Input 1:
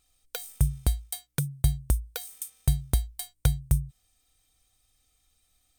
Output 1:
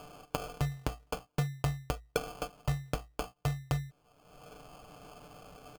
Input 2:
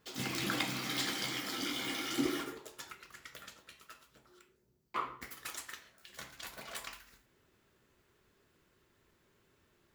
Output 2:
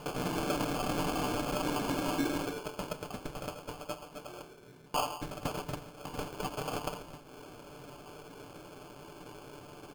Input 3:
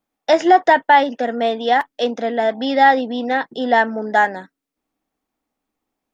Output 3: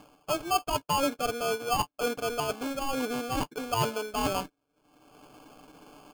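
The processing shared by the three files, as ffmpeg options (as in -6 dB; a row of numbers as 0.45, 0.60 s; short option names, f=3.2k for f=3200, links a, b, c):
-filter_complex "[0:a]asplit=2[a][b];[b]acompressor=mode=upward:threshold=-22dB:ratio=2.5,volume=1dB[c];[a][c]amix=inputs=2:normalize=0,highpass=f=390:p=1,highshelf=f=5.4k:g=-8.5,areverse,acompressor=threshold=-23dB:ratio=10,areverse,acrusher=samples=23:mix=1:aa=0.000001,aecho=1:1:6.8:0.49,volume=-3.5dB"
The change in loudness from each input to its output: -7.0, +1.5, -13.5 LU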